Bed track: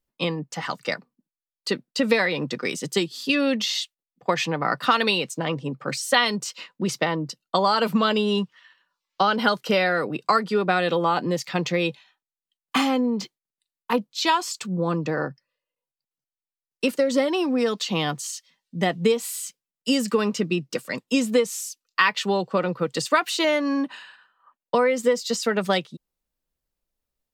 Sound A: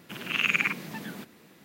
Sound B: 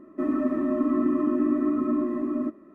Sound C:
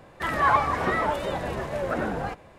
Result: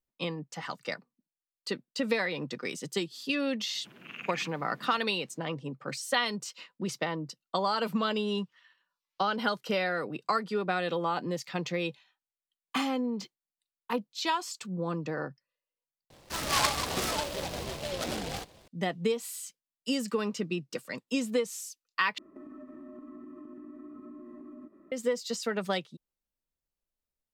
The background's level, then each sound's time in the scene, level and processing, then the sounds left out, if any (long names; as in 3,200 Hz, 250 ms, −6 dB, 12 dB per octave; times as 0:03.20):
bed track −8.5 dB
0:03.75: mix in A −13 dB + high-shelf EQ 3,000 Hz −11.5 dB
0:16.10: overwrite with C −6.5 dB + short delay modulated by noise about 3,100 Hz, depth 0.14 ms
0:22.18: overwrite with B −7 dB + downward compressor 8 to 1, threshold −37 dBFS